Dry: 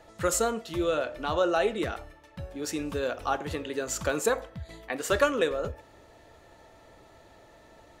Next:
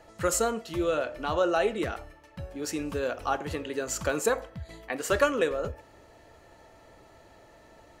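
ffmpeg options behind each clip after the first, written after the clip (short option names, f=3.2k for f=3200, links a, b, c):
-af "bandreject=f=3.6k:w=12"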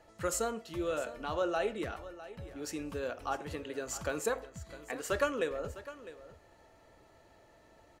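-af "aecho=1:1:655:0.168,volume=-7dB"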